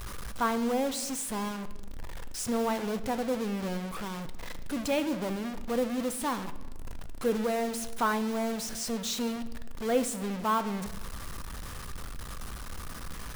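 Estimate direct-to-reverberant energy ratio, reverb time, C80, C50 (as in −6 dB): 11.0 dB, 1.2 s, 16.0 dB, 14.0 dB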